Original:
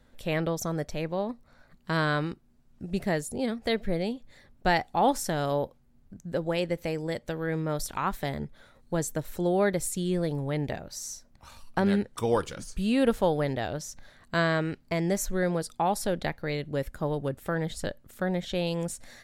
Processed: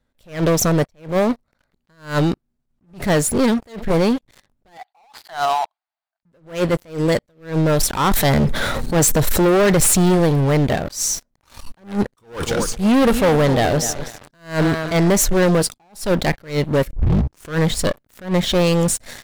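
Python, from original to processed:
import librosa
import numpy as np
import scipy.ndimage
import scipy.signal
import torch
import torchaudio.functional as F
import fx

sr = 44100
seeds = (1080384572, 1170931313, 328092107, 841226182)

y = fx.brickwall_bandpass(x, sr, low_hz=620.0, high_hz=5000.0, at=(4.77, 6.23))
y = fx.env_flatten(y, sr, amount_pct=50, at=(8.11, 10.15))
y = fx.echo_feedback(y, sr, ms=251, feedback_pct=39, wet_db=-16.0, at=(12.17, 15.12))
y = fx.edit(y, sr, fx.tape_start(start_s=16.93, length_s=0.64), tone=tone)
y = fx.leveller(y, sr, passes=5)
y = fx.attack_slew(y, sr, db_per_s=180.0)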